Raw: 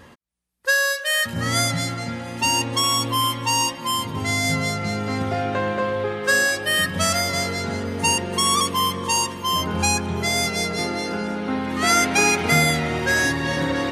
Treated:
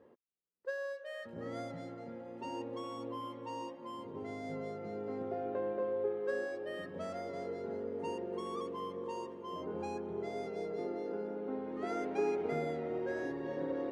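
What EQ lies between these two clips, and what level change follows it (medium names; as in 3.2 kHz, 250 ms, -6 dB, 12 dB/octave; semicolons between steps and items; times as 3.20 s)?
band-pass filter 430 Hz, Q 2.6; -6.5 dB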